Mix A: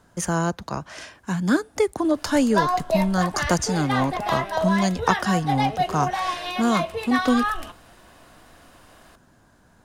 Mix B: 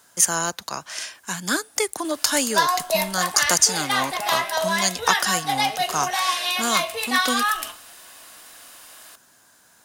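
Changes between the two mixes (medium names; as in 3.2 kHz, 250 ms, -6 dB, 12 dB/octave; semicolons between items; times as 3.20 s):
background: send +10.0 dB; master: add tilt EQ +4.5 dB/octave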